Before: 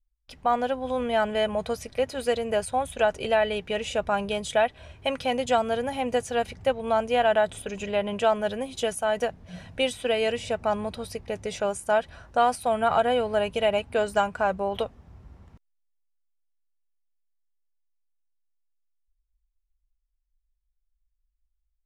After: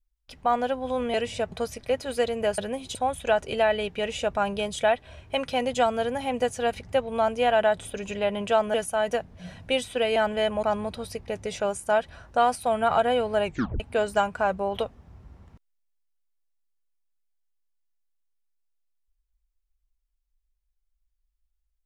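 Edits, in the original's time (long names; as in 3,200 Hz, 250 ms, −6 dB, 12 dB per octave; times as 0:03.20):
0:01.14–0:01.61: swap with 0:10.25–0:10.63
0:08.46–0:08.83: move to 0:02.67
0:13.45: tape stop 0.35 s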